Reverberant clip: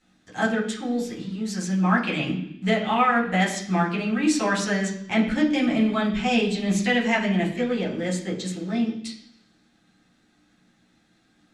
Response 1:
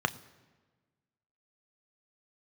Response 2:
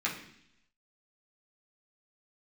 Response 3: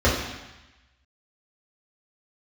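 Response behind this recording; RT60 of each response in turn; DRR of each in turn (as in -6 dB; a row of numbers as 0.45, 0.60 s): 2; not exponential, 0.70 s, 1.0 s; 10.0, -5.5, -8.5 dB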